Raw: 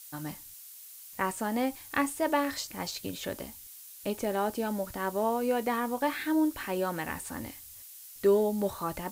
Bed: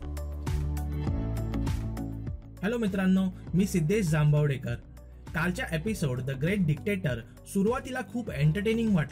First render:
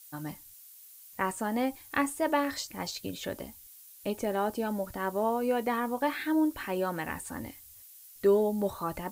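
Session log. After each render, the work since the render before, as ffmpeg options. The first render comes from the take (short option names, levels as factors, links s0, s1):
-af "afftdn=nr=6:nf=-49"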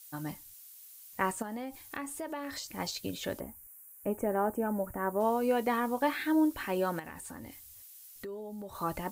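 -filter_complex "[0:a]asettb=1/sr,asplit=3[s0][s1][s2];[s0]atrim=end=1.424[s3];[s1]atrim=start=1.42:end=2.78,asetpts=PTS-STARTPTS,afade=t=in:d=0.004:c=qsin,afade=t=out:st=1.356:d=0.004:c=qsin,acompressor=threshold=0.0158:ratio=4:attack=3.2:release=140:knee=1:detection=peak[s4];[s2]atrim=start=2.776[s5];[s3][s4]acrossfade=d=0.004:c1=hsin:c2=qsin[s6];[s6][s5]acrossfade=d=0.004:c1=qsin:c2=hsin,asplit=3[s7][s8][s9];[s7]afade=t=out:st=3.39:d=0.02[s10];[s8]asuperstop=centerf=4100:order=4:qfactor=0.6,afade=t=in:st=3.39:d=0.02,afade=t=out:st=5.19:d=0.02[s11];[s9]afade=t=in:st=5.19:d=0.02[s12];[s10][s11][s12]amix=inputs=3:normalize=0,asettb=1/sr,asplit=3[s13][s14][s15];[s13]atrim=end=6.994[s16];[s14]atrim=start=6.99:end=8.75,asetpts=PTS-STARTPTS,afade=t=in:d=0.004:c=qsin,afade=t=out:st=1.756:d=0.004:c=qsin,acompressor=threshold=0.01:ratio=6:attack=3.2:release=140:knee=1:detection=peak[s17];[s15]atrim=start=8.746[s18];[s16][s17]acrossfade=d=0.004:c1=hsin:c2=qsin[s19];[s19][s18]acrossfade=d=0.004:c1=qsin:c2=hsin"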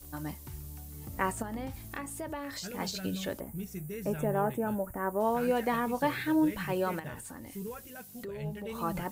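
-filter_complex "[1:a]volume=0.2[s0];[0:a][s0]amix=inputs=2:normalize=0"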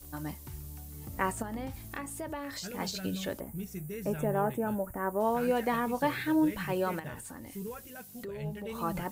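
-af anull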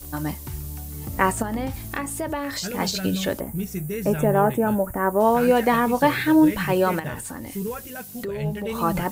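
-af "volume=3.35"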